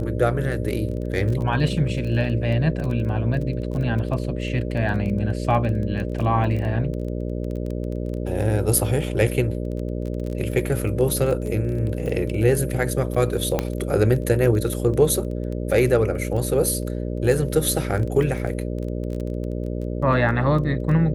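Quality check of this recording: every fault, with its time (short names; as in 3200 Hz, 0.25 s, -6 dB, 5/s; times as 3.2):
buzz 60 Hz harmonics 10 -27 dBFS
crackle 16/s -28 dBFS
13.59 pop -7 dBFS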